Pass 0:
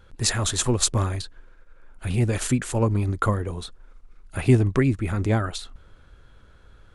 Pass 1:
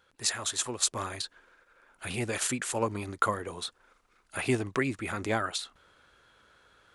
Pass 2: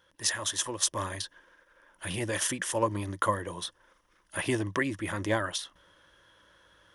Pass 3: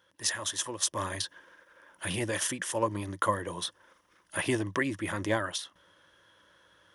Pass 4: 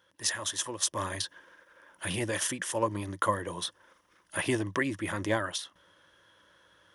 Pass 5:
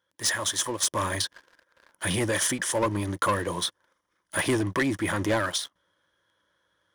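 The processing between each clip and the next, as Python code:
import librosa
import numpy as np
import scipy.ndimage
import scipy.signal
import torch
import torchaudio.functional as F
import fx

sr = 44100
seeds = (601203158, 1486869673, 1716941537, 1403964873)

y1 = fx.highpass(x, sr, hz=800.0, slope=6)
y1 = fx.rider(y1, sr, range_db=4, speed_s=0.5)
y1 = y1 * librosa.db_to_amplitude(-1.5)
y2 = fx.ripple_eq(y1, sr, per_octave=1.2, db=9)
y3 = scipy.signal.sosfilt(scipy.signal.butter(2, 85.0, 'highpass', fs=sr, output='sos'), y2)
y3 = fx.rider(y3, sr, range_db=10, speed_s=0.5)
y4 = y3
y5 = fx.notch(y4, sr, hz=2700.0, q=8.2)
y5 = fx.leveller(y5, sr, passes=3)
y5 = y5 * librosa.db_to_amplitude(-4.0)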